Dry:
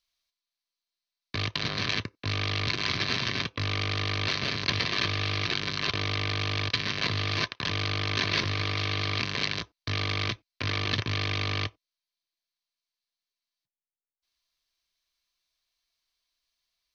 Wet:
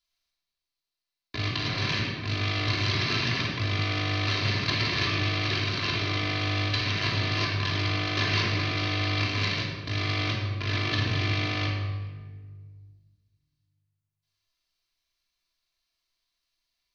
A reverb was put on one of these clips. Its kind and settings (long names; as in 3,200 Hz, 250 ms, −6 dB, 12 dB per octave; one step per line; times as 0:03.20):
rectangular room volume 1,500 cubic metres, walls mixed, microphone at 3.1 metres
level −4.5 dB